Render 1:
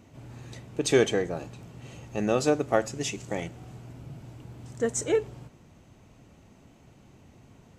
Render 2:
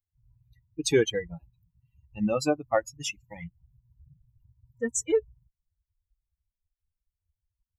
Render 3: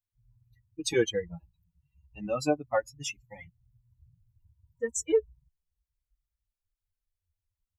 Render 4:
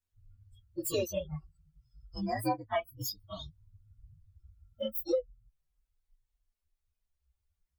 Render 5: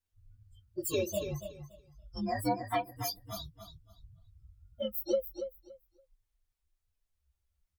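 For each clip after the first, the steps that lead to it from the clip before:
expander on every frequency bin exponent 3; in parallel at 0 dB: peak limiter -24.5 dBFS, peak gain reduction 11 dB
endless flanger 5.2 ms -0.31 Hz
frequency axis rescaled in octaves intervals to 126%; compression 2:1, threshold -46 dBFS, peak gain reduction 14 dB; trim +9 dB
wow and flutter 88 cents; feedback delay 284 ms, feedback 20%, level -9 dB

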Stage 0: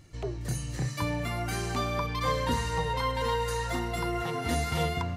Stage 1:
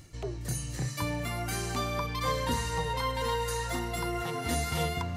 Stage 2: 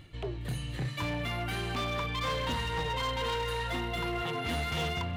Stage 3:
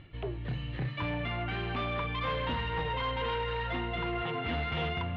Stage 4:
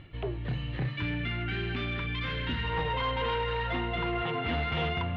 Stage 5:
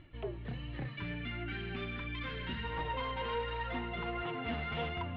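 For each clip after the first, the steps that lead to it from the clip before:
treble shelf 6 kHz +7.5 dB; reverse; upward compressor, threshold -32 dBFS; reverse; trim -2 dB
resonant high shelf 4.4 kHz -9.5 dB, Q 3; overload inside the chain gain 28.5 dB
low-pass 3.2 kHz 24 dB/octave
time-frequency box 0.97–2.64 s, 450–1300 Hz -11 dB; trim +2.5 dB
low-pass 3.8 kHz 6 dB/octave; flange 1.4 Hz, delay 2.9 ms, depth 2.5 ms, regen +40%; trim -2 dB

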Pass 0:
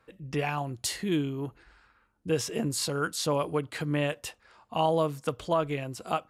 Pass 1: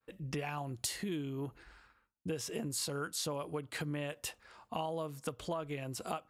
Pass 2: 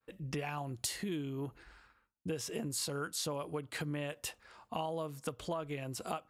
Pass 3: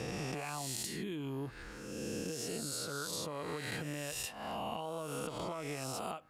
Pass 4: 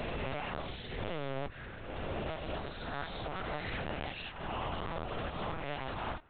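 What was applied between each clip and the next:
compression 5:1, threshold -36 dBFS, peak gain reduction 13.5 dB; expander -58 dBFS; treble shelf 8.8 kHz +5.5 dB
no audible change
reverse spectral sustain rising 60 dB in 1.40 s; compression 12:1, threshold -41 dBFS, peak gain reduction 13 dB; trim +5 dB
cycle switcher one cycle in 2, inverted; LPC vocoder at 8 kHz pitch kept; trim +2.5 dB

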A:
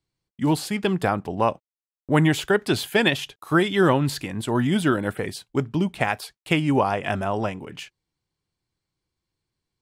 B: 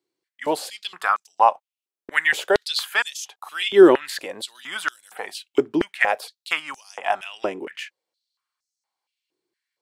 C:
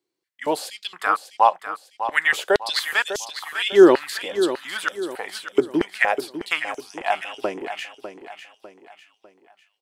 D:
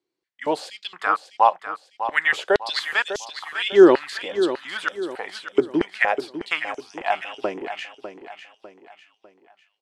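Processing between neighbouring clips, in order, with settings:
step-sequenced high-pass 4.3 Hz 360–6100 Hz; trim -1 dB
feedback delay 600 ms, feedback 41%, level -10.5 dB
distance through air 75 m

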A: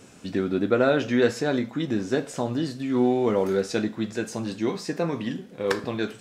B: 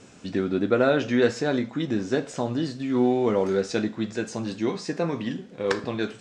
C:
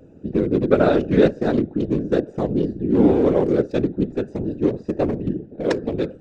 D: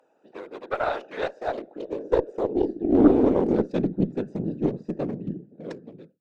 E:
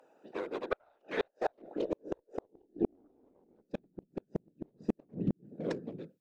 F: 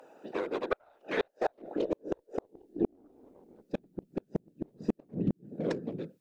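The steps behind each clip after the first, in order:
low-pass 8.1 kHz 24 dB/octave
local Wiener filter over 41 samples; peaking EQ 330 Hz +6.5 dB 1.6 oct; whisper effect; trim +1.5 dB
fade out at the end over 1.66 s; high-pass sweep 880 Hz -> 160 Hz, 1.13–3.97 s; Chebyshev shaper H 4 -17 dB, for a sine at 2 dBFS; trim -7 dB
dynamic bell 810 Hz, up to +4 dB, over -36 dBFS, Q 1.8; compression 8:1, threshold -20 dBFS, peak gain reduction 11 dB; inverted gate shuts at -19 dBFS, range -42 dB; trim +1 dB
compression 1.5:1, threshold -47 dBFS, peak gain reduction 8.5 dB; trim +9 dB

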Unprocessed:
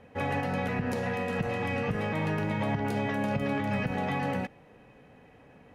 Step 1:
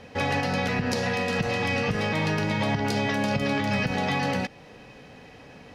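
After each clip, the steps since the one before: peaking EQ 4.9 kHz +15 dB 1.2 oct; in parallel at -1 dB: compression, threshold -38 dBFS, peak gain reduction 13.5 dB; on the sum: trim +1.5 dB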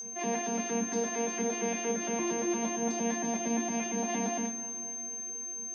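vocoder on a broken chord bare fifth, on A#3, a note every 115 ms; whistle 6.3 kHz -29 dBFS; two-slope reverb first 0.35 s, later 3.5 s, from -17 dB, DRR 1 dB; trim -8 dB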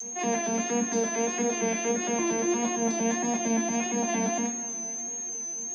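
vibrato 1.6 Hz 44 cents; trim +4.5 dB

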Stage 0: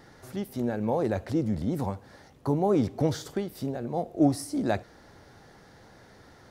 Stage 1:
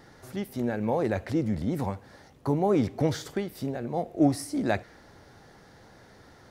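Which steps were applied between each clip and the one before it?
dynamic bell 2.1 kHz, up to +6 dB, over -54 dBFS, Q 1.6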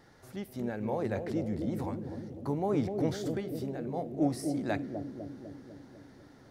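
bucket-brigade echo 250 ms, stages 1024, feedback 66%, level -5 dB; trim -6.5 dB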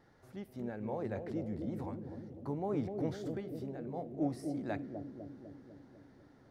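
treble shelf 3.3 kHz -8.5 dB; trim -5.5 dB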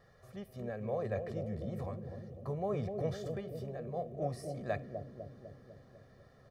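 comb 1.7 ms, depth 85%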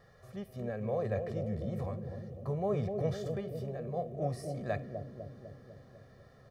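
harmonic-percussive split harmonic +4 dB

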